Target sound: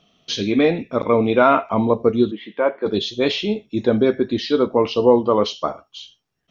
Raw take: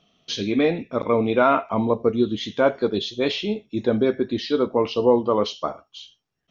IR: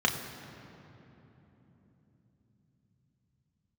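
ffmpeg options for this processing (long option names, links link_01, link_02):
-filter_complex "[0:a]asplit=3[link_01][link_02][link_03];[link_01]afade=type=out:start_time=2.3:duration=0.02[link_04];[link_02]highpass=frequency=240:width=0.5412,highpass=frequency=240:width=1.3066,equalizer=frequency=260:width_type=q:width=4:gain=-9,equalizer=frequency=420:width_type=q:width=4:gain=-5,equalizer=frequency=690:width_type=q:width=4:gain=-6,equalizer=frequency=1400:width_type=q:width=4:gain=-6,lowpass=frequency=2300:width=0.5412,lowpass=frequency=2300:width=1.3066,afade=type=in:start_time=2.3:duration=0.02,afade=type=out:start_time=2.85:duration=0.02[link_05];[link_03]afade=type=in:start_time=2.85:duration=0.02[link_06];[link_04][link_05][link_06]amix=inputs=3:normalize=0,volume=3.5dB"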